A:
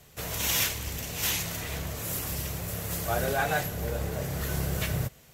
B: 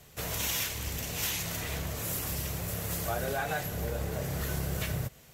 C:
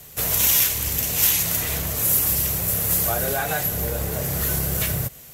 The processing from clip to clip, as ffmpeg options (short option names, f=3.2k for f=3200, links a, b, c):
-af "acompressor=threshold=-29dB:ratio=4"
-af "equalizer=f=13k:t=o:w=1.3:g=11.5,volume=6.5dB"